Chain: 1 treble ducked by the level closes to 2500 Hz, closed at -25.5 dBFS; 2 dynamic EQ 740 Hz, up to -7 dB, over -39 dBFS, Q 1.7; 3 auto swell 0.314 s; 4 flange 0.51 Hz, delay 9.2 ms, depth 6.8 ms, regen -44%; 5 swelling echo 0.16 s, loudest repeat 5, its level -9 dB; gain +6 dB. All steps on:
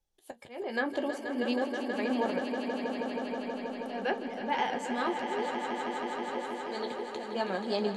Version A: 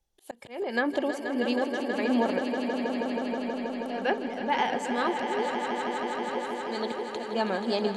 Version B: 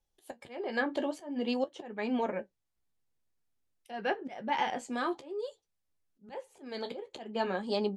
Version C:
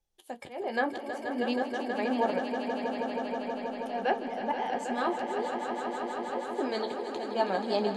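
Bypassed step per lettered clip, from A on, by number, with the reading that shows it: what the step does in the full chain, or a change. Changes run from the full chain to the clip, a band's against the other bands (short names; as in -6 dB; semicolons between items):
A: 4, loudness change +4.0 LU; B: 5, echo-to-direct 0.5 dB to none; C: 2, 1 kHz band +3.0 dB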